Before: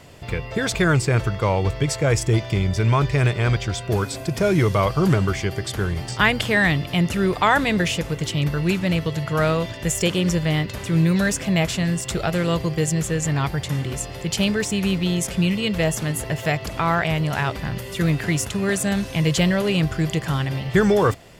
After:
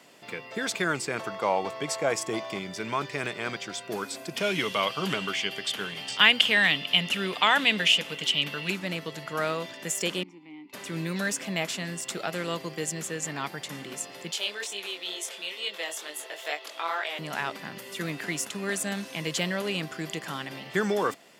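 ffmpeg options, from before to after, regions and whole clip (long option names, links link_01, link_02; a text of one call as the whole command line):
ffmpeg -i in.wav -filter_complex "[0:a]asettb=1/sr,asplit=3[link_01][link_02][link_03];[link_01]atrim=end=1.194[link_04];[link_02]atrim=start=1.19:end=2.59,asetpts=PTS-STARTPTS,afade=type=in:duration=0.004:curve=qsin,afade=type=out:start_time=1.396:duration=0.004:curve=qsin,equalizer=frequency=730:width=1.9:gain=8.5,aeval=exprs='val(0)+0.0141*sin(2*PI*1100*n/s)':channel_layout=same[link_05];[link_03]atrim=start=2.586[link_06];[link_04][link_05]acrossfade=duration=0.004:curve1=hsin:curve2=qsin[link_07];[link_07][link_06]acrossfade=duration=0.004:curve1=qsin:curve2=hsin,asettb=1/sr,asplit=3[link_08][link_09][link_10];[link_08]atrim=end=4.364[link_11];[link_09]atrim=start=4.36:end=8.7,asetpts=PTS-STARTPTS,afade=type=in:duration=0.004:curve=qsin,afade=type=out:start_time=4.336:duration=0.004:curve=qsin,equalizer=frequency=3000:width=2.1:gain=14,bandreject=frequency=340:width=6.4[link_12];[link_10]atrim=start=8.696[link_13];[link_11][link_12]acrossfade=duration=0.004:curve1=hsin:curve2=qsin[link_14];[link_14][link_13]acrossfade=duration=0.004:curve1=qsin:curve2=hsin,asettb=1/sr,asplit=3[link_15][link_16][link_17];[link_15]atrim=end=10.234[link_18];[link_16]atrim=start=10.23:end=10.73,asetpts=PTS-STARTPTS,afade=type=in:duration=0.004:curve=qsin,afade=type=out:start_time=0.496:duration=0.004:curve=qsin,asplit=3[link_19][link_20][link_21];[link_19]bandpass=frequency=300:width_type=q:width=8,volume=0dB[link_22];[link_20]bandpass=frequency=870:width_type=q:width=8,volume=-6dB[link_23];[link_21]bandpass=frequency=2240:width_type=q:width=8,volume=-9dB[link_24];[link_22][link_23][link_24]amix=inputs=3:normalize=0,acompressor=threshold=-40dB:ratio=1.5:attack=3.2:release=140:knee=1:detection=peak[link_25];[link_17]atrim=start=10.726[link_26];[link_18][link_25]acrossfade=duration=0.004:curve1=hsin:curve2=qsin[link_27];[link_27][link_26]acrossfade=duration=0.004:curve1=qsin:curve2=hsin,asettb=1/sr,asplit=3[link_28][link_29][link_30];[link_28]atrim=end=14.314[link_31];[link_29]atrim=start=14.31:end=17.19,asetpts=PTS-STARTPTS,afade=type=in:duration=0.004:curve=qsin,afade=type=out:start_time=2.876:duration=0.004:curve=qsin,highpass=frequency=390:width=0.5412,highpass=frequency=390:width=1.3066,equalizer=frequency=3500:width_type=o:width=0.41:gain=8,flanger=delay=20:depth=4.6:speed=2.2[link_32];[link_30]atrim=start=17.186[link_33];[link_31][link_32]acrossfade=duration=0.004:curve1=hsin:curve2=qsin[link_34];[link_34][link_33]acrossfade=duration=0.004:curve1=qsin:curve2=hsin,highpass=frequency=220:width=0.5412,highpass=frequency=220:width=1.3066,equalizer=frequency=440:width=0.81:gain=-4.5,volume=-5dB" out.wav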